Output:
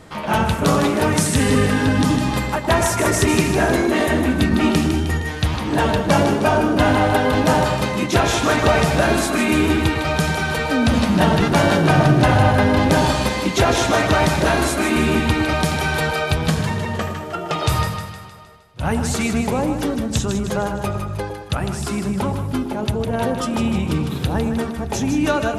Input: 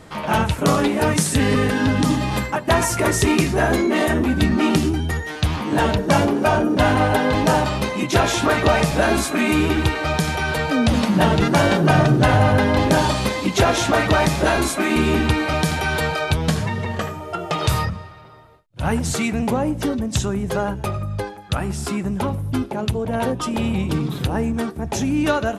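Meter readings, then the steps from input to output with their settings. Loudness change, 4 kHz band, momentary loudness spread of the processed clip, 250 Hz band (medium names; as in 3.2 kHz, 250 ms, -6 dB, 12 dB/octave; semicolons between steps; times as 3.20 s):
+1.0 dB, +1.0 dB, 8 LU, +1.0 dB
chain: two-band feedback delay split 1 kHz, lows 110 ms, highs 155 ms, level -7 dB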